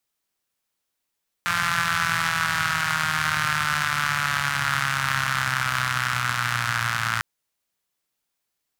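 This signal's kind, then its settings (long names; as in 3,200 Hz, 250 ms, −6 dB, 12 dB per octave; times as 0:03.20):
pulse-train model of a four-cylinder engine, changing speed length 5.75 s, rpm 5,200, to 3,400, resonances 120/1,400 Hz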